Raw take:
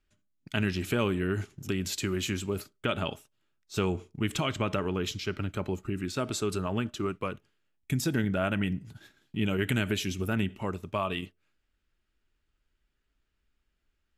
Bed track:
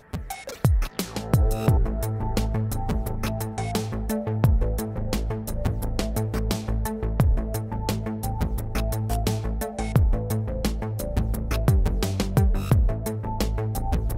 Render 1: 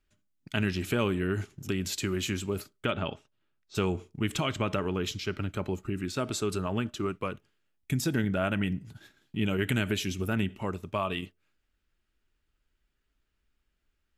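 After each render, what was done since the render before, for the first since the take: 2.91–3.75 air absorption 140 m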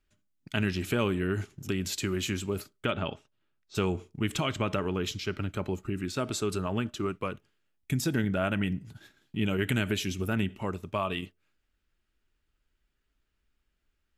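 nothing audible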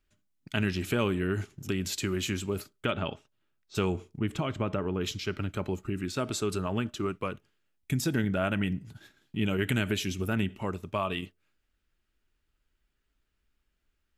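4.18–5.01 high shelf 2000 Hz -11.5 dB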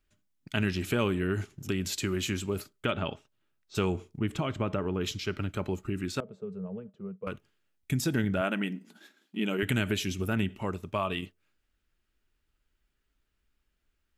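6.2–7.27 double band-pass 300 Hz, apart 1.3 oct; 8.41–9.63 brick-wall FIR high-pass 180 Hz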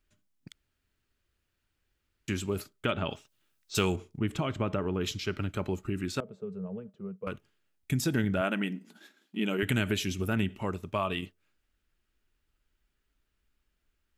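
0.52–2.28 room tone; 3.1–3.96 high shelf 2700 Hz +11.5 dB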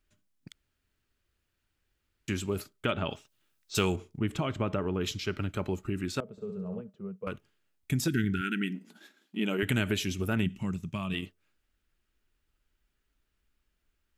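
6.31–6.81 flutter echo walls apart 11.4 m, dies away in 0.72 s; 8.08–8.75 brick-wall FIR band-stop 430–1300 Hz; 10.46–11.14 EQ curve 110 Hz 0 dB, 160 Hz +9 dB, 490 Hz -13 dB, 1200 Hz -9 dB, 2600 Hz -2 dB, 4300 Hz -3 dB, 6400 Hz +4 dB, 12000 Hz -3 dB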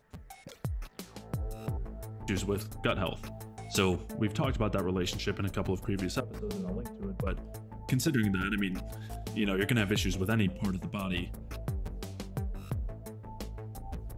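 add bed track -15.5 dB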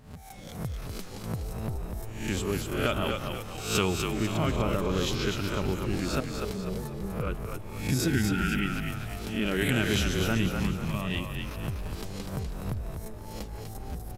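spectral swells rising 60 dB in 0.55 s; frequency-shifting echo 0.247 s, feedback 44%, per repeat -44 Hz, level -5 dB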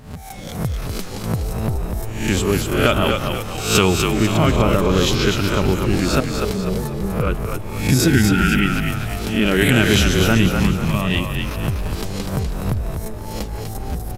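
gain +11.5 dB; limiter -1 dBFS, peak gain reduction 1 dB

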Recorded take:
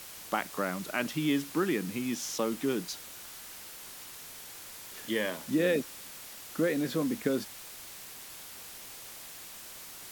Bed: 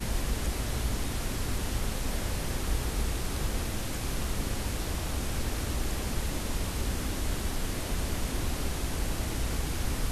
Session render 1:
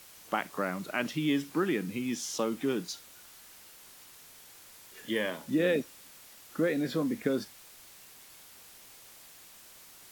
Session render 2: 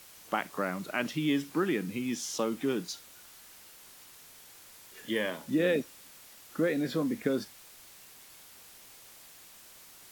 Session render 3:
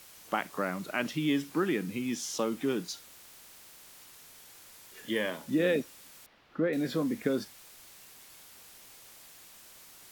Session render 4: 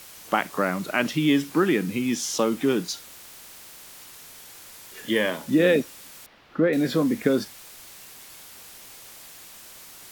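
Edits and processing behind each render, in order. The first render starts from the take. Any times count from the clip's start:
noise print and reduce 7 dB
nothing audible
3.11–3.98 spectral compressor 10:1; 6.26–6.73 air absorption 320 m
gain +8 dB

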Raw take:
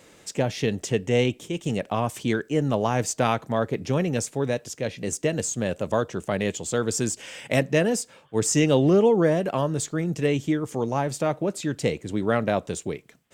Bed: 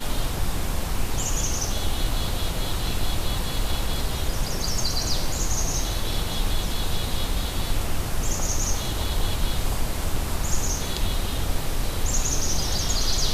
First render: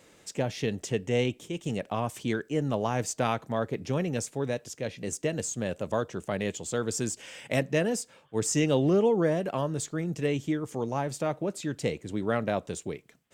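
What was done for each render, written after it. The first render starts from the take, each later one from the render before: gain -5 dB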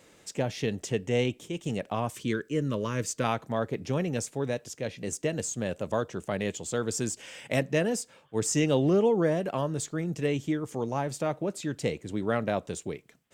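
2.15–3.24 Butterworth band-stop 760 Hz, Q 1.8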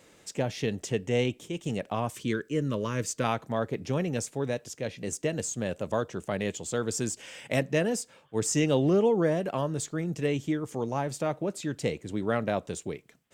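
nothing audible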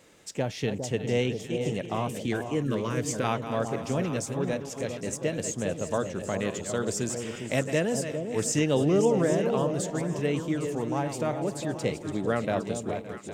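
regenerating reverse delay 0.283 s, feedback 41%, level -10 dB; echo with dull and thin repeats by turns 0.405 s, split 870 Hz, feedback 52%, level -6.5 dB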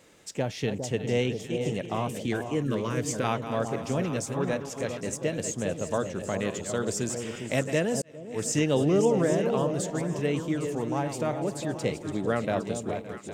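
4.21–5.07 dynamic EQ 1200 Hz, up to +6 dB, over -47 dBFS, Q 1.3; 8.02–8.56 fade in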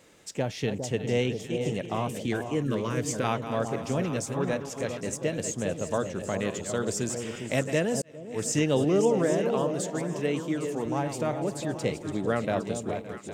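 8.84–10.86 HPF 160 Hz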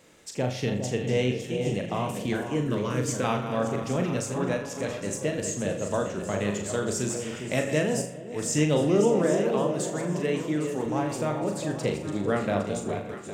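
on a send: flutter echo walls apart 6.8 m, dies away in 0.36 s; on the sum: spring tank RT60 1.4 s, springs 34/39 ms, chirp 65 ms, DRR 11.5 dB

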